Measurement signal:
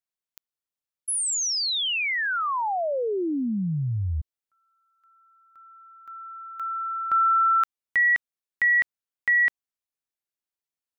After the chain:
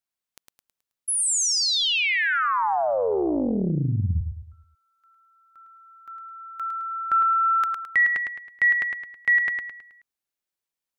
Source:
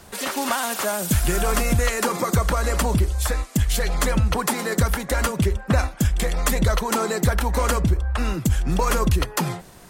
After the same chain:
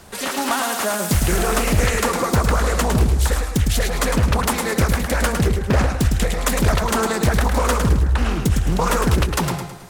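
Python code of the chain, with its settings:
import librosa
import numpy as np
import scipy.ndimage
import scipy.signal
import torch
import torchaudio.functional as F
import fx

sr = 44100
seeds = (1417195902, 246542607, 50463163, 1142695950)

y = fx.echo_feedback(x, sr, ms=107, feedback_pct=41, wet_db=-5.5)
y = fx.doppler_dist(y, sr, depth_ms=0.82)
y = y * librosa.db_to_amplitude(2.0)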